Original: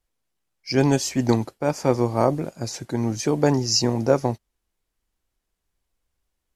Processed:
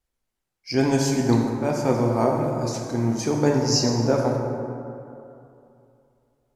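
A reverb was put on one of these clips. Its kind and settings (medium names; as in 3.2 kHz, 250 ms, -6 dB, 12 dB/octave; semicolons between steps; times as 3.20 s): plate-style reverb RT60 2.7 s, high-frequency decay 0.4×, DRR -0.5 dB; trim -3.5 dB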